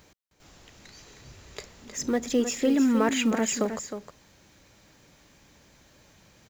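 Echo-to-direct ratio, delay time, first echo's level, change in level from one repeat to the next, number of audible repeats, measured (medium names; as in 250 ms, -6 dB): -9.0 dB, 312 ms, -9.0 dB, no regular repeats, 1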